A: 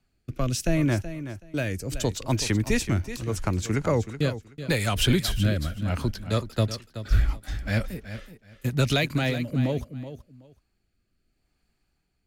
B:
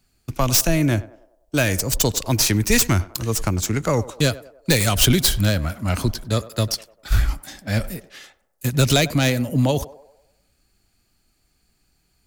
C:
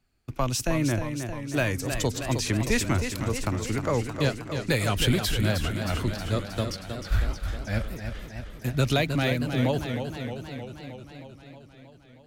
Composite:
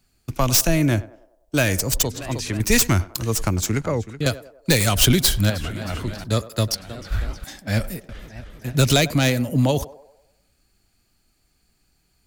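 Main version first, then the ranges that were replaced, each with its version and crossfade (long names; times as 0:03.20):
B
0:02.03–0:02.60: punch in from C
0:03.81–0:04.26: punch in from A
0:05.50–0:06.24: punch in from C
0:06.75–0:07.44: punch in from C
0:08.09–0:08.75: punch in from C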